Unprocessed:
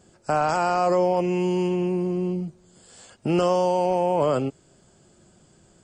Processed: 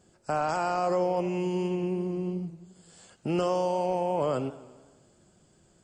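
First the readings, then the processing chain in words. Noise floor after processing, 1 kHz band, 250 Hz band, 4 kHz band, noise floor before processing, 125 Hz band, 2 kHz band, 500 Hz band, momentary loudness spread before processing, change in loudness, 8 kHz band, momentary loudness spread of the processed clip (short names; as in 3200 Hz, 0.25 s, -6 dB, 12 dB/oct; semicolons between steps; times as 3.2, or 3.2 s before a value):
-63 dBFS, -6.0 dB, -5.5 dB, -6.0 dB, -58 dBFS, -5.5 dB, -6.0 dB, -6.0 dB, 8 LU, -6.0 dB, -6.0 dB, 7 LU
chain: warbling echo 86 ms, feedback 66%, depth 122 cents, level -17 dB; gain -6 dB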